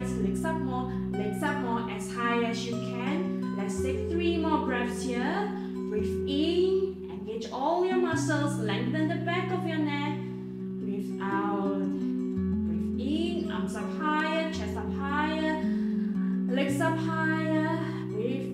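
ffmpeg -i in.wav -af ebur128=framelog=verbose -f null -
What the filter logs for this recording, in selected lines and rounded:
Integrated loudness:
  I:         -29.5 LUFS
  Threshold: -39.5 LUFS
Loudness range:
  LRA:         2.1 LU
  Threshold: -49.5 LUFS
  LRA low:   -30.5 LUFS
  LRA high:  -28.4 LUFS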